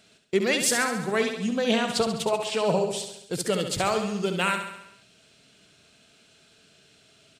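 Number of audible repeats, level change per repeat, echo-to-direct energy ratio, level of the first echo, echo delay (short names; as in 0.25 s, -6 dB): 6, -4.5 dB, -5.5 dB, -7.5 dB, 68 ms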